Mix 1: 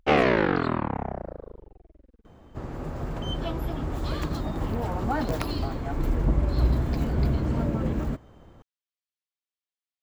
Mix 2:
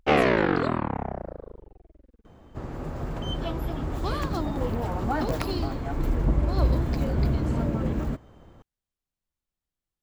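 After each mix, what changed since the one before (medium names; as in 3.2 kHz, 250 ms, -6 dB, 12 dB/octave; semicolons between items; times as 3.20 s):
speech: remove band-pass filter 3.3 kHz, Q 0.95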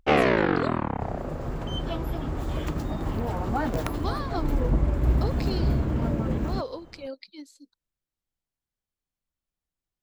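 second sound: entry -1.55 s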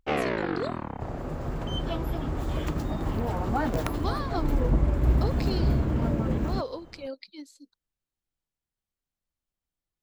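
first sound -7.0 dB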